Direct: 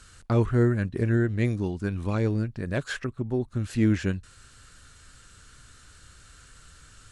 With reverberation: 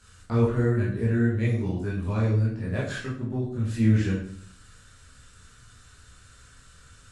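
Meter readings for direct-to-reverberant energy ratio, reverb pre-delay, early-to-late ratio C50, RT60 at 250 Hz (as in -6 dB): -7.5 dB, 13 ms, 3.5 dB, 0.70 s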